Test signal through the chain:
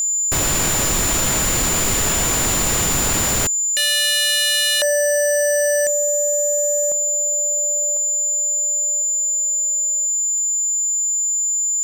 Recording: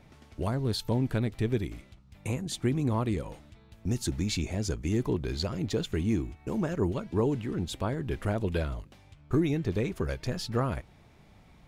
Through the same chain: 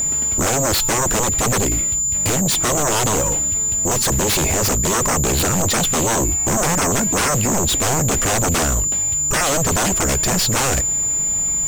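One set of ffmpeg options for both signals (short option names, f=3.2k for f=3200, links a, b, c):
-af "aeval=exprs='val(0)+0.0126*sin(2*PI*7100*n/s)':c=same,aeval=exprs='0.188*sin(PI/2*7.94*val(0)/0.188)':c=same"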